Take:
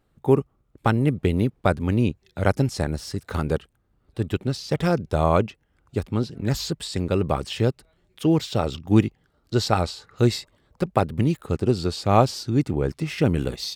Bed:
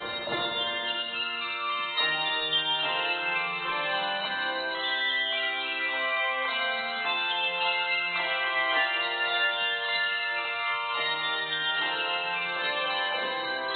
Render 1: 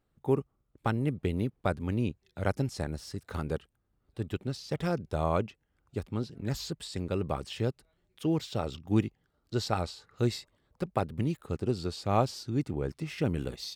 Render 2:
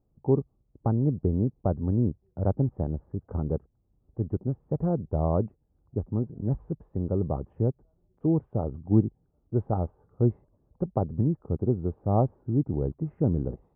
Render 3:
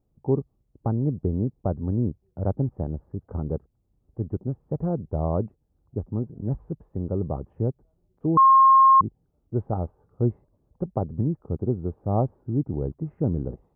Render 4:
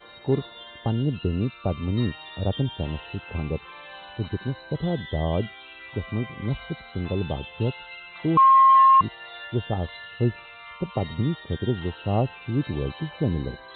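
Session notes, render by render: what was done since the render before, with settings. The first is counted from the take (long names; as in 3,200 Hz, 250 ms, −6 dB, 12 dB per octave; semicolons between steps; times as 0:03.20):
level −9 dB
inverse Chebyshev low-pass filter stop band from 4,000 Hz, stop band 70 dB; low-shelf EQ 360 Hz +7 dB
0:08.37–0:09.01: beep over 1,070 Hz −11 dBFS
mix in bed −13.5 dB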